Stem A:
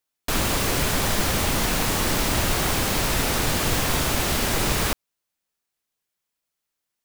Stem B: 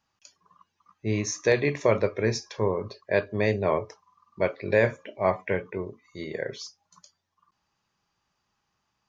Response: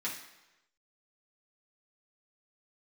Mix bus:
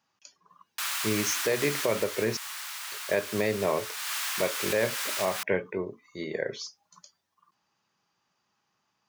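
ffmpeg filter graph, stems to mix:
-filter_complex "[0:a]highpass=frequency=1100:width=0.5412,highpass=frequency=1100:width=1.3066,adelay=500,volume=1.5dB,afade=type=out:start_time=1.79:duration=0.47:silence=0.446684,afade=type=in:start_time=3.92:duration=0.22:silence=0.473151[link_01];[1:a]highpass=150,volume=1dB,asplit=3[link_02][link_03][link_04];[link_02]atrim=end=2.37,asetpts=PTS-STARTPTS,afade=type=out:start_time=2.366:duration=0.004:curve=hsin[link_05];[link_03]atrim=start=2.37:end=2.92,asetpts=PTS-STARTPTS,volume=0[link_06];[link_04]atrim=start=2.92,asetpts=PTS-STARTPTS,afade=type=in:duration=0.004:curve=hsin[link_07];[link_05][link_06][link_07]concat=n=3:v=0:a=1[link_08];[link_01][link_08]amix=inputs=2:normalize=0,alimiter=limit=-15.5dB:level=0:latency=1:release=167"

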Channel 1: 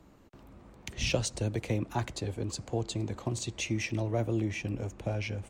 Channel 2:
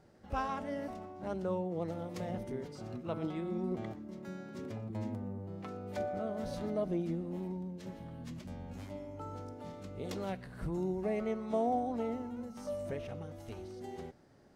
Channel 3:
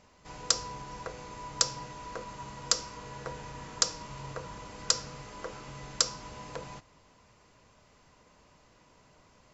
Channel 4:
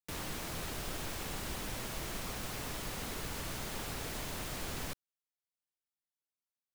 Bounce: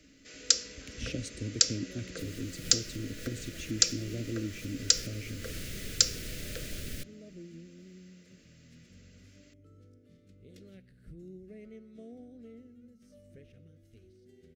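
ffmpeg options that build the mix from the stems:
ffmpeg -i stem1.wav -i stem2.wav -i stem3.wav -i stem4.wav -filter_complex "[0:a]equalizer=frequency=270:width=3.6:gain=13.5,volume=-9.5dB,asplit=2[link_01][link_02];[1:a]adelay=450,volume=-13.5dB[link_03];[2:a]highpass=520,volume=3dB[link_04];[3:a]adelay=2100,volume=-1dB[link_05];[link_02]apad=whole_len=389865[link_06];[link_05][link_06]sidechaincompress=threshold=-47dB:ratio=8:attack=16:release=208[link_07];[link_01][link_03][link_04][link_07]amix=inputs=4:normalize=0,asuperstop=centerf=910:order=4:qfactor=0.74,lowshelf=frequency=140:gain=5" out.wav

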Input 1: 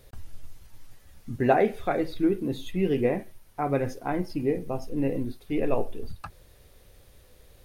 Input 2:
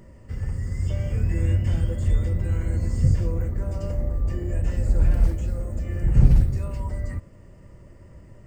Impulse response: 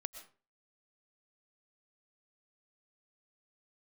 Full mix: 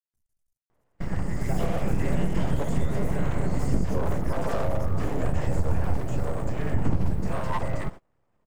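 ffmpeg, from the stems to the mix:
-filter_complex "[0:a]acrusher=bits=5:mix=0:aa=0.5,highshelf=frequency=5200:width_type=q:width=1.5:gain=10.5,agate=range=-33dB:threshold=-39dB:ratio=3:detection=peak,volume=-15.5dB[link_01];[1:a]equalizer=frequency=860:width=1:gain=12,aeval=exprs='abs(val(0))':channel_layout=same,adelay=700,volume=2.5dB[link_02];[link_01][link_02]amix=inputs=2:normalize=0,agate=range=-27dB:threshold=-33dB:ratio=16:detection=peak,acompressor=threshold=-17dB:ratio=6"

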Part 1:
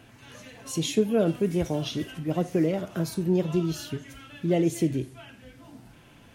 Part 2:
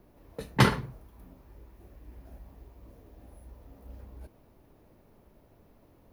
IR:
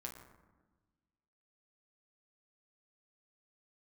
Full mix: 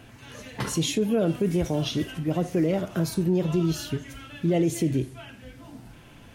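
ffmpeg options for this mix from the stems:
-filter_complex "[0:a]lowshelf=frequency=66:gain=7,volume=3dB[link_01];[1:a]volume=-10dB[link_02];[link_01][link_02]amix=inputs=2:normalize=0,alimiter=limit=-15dB:level=0:latency=1:release=23"

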